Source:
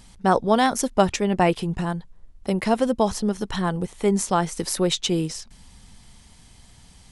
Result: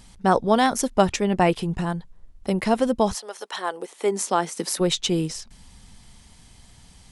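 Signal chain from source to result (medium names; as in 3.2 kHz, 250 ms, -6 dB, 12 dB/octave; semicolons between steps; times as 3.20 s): 3.13–4.79 s: high-pass 640 Hz -> 160 Hz 24 dB/octave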